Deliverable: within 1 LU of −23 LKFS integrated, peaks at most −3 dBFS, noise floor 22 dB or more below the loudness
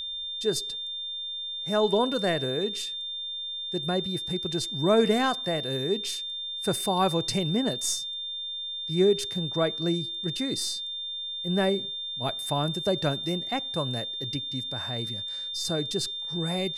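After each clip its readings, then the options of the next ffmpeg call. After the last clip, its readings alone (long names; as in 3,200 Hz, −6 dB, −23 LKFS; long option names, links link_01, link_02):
interfering tone 3,600 Hz; level of the tone −32 dBFS; integrated loudness −28.0 LKFS; sample peak −11.0 dBFS; target loudness −23.0 LKFS
→ -af "bandreject=frequency=3600:width=30"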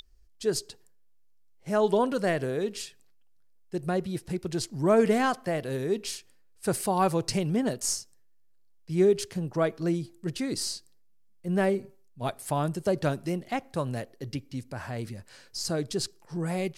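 interfering tone none found; integrated loudness −29.0 LKFS; sample peak −11.5 dBFS; target loudness −23.0 LKFS
→ -af "volume=6dB"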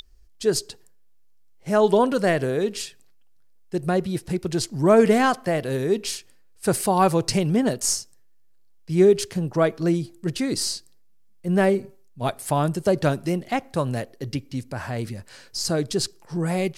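integrated loudness −23.0 LKFS; sample peak −5.5 dBFS; background noise floor −52 dBFS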